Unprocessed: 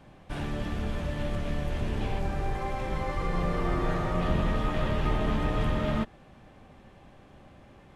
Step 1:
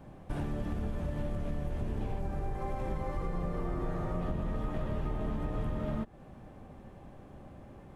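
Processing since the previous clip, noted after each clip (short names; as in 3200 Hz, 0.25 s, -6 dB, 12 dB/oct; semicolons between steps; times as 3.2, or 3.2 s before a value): bell 3400 Hz -11 dB 2.7 oct; compressor, threshold -34 dBFS, peak gain reduction 12.5 dB; gain +3.5 dB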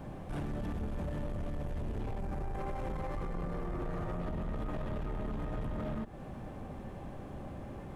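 limiter -32.5 dBFS, peak gain reduction 9.5 dB; soft clip -39 dBFS, distortion -13 dB; gain +7 dB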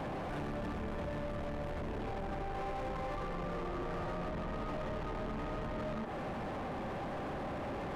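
limiter -37.5 dBFS, peak gain reduction 5.5 dB; overdrive pedal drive 26 dB, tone 1700 Hz, clips at -37.5 dBFS; gain +4 dB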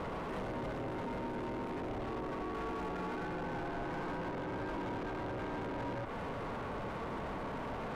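ring modulator 340 Hz; gain +2.5 dB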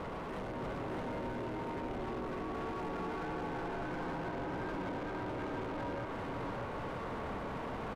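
echo 0.605 s -3.5 dB; gain -1.5 dB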